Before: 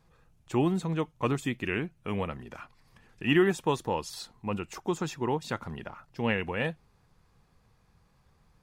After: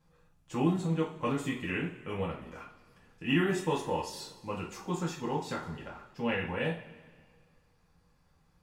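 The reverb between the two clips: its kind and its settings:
coupled-rooms reverb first 0.35 s, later 1.8 s, from −18 dB, DRR −4.5 dB
level −8.5 dB

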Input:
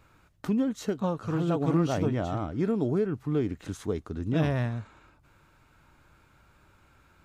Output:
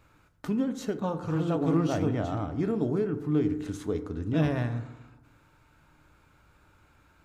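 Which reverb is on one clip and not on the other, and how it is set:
feedback delay network reverb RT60 1.1 s, low-frequency decay 1.05×, high-frequency decay 0.35×, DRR 8.5 dB
level −1.5 dB

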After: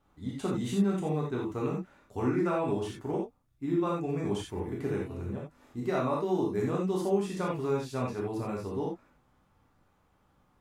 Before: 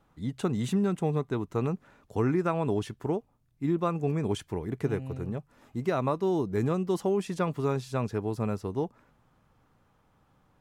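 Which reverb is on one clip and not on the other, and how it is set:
reverb whose tail is shaped and stops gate 110 ms flat, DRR −3.5 dB
level −6.5 dB

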